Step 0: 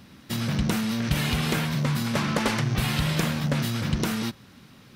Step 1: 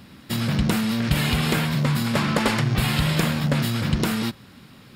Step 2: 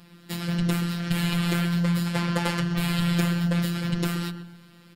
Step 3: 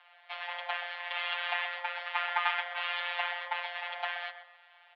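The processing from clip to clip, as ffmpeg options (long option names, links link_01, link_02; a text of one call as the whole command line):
ffmpeg -i in.wav -af "bandreject=frequency=6000:width=7.2,volume=3.5dB" out.wav
ffmpeg -i in.wav -filter_complex "[0:a]afftfilt=real='hypot(re,im)*cos(PI*b)':imag='0':win_size=1024:overlap=0.75,asplit=2[link_01][link_02];[link_02]adelay=127,lowpass=frequency=1300:poles=1,volume=-7.5dB,asplit=2[link_03][link_04];[link_04]adelay=127,lowpass=frequency=1300:poles=1,volume=0.45,asplit=2[link_05][link_06];[link_06]adelay=127,lowpass=frequency=1300:poles=1,volume=0.45,asplit=2[link_07][link_08];[link_08]adelay=127,lowpass=frequency=1300:poles=1,volume=0.45,asplit=2[link_09][link_10];[link_10]adelay=127,lowpass=frequency=1300:poles=1,volume=0.45[link_11];[link_01][link_03][link_05][link_07][link_09][link_11]amix=inputs=6:normalize=0,volume=-2dB" out.wav
ffmpeg -i in.wav -af "highpass=frequency=400:width_type=q:width=0.5412,highpass=frequency=400:width_type=q:width=1.307,lowpass=frequency=2900:width_type=q:width=0.5176,lowpass=frequency=2900:width_type=q:width=0.7071,lowpass=frequency=2900:width_type=q:width=1.932,afreqshift=360" out.wav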